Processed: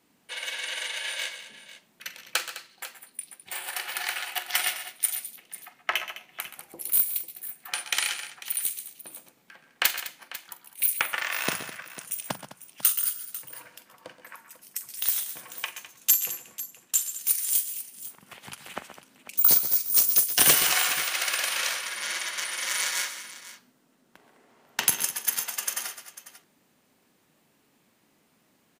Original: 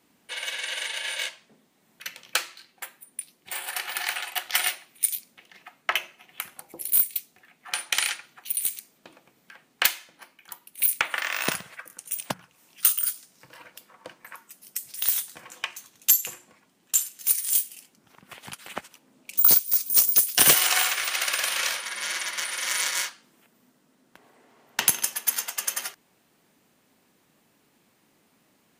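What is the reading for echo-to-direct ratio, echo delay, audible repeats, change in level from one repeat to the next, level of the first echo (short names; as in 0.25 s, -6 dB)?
-8.0 dB, 44 ms, 4, no steady repeat, -14.5 dB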